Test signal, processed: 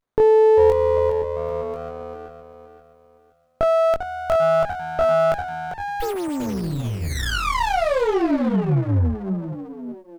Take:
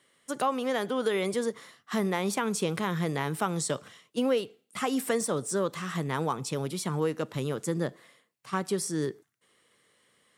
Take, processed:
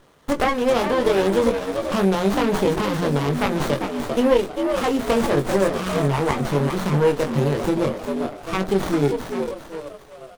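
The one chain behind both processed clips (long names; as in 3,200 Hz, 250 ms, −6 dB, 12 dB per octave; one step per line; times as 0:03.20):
mains-hum notches 60/120/180/240 Hz
echo with shifted repeats 395 ms, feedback 38%, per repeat +80 Hz, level −8.5 dB
in parallel at +2 dB: downward compressor, threshold −36 dBFS
on the sum: double-tracking delay 21 ms −3.5 dB
windowed peak hold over 17 samples
level +6 dB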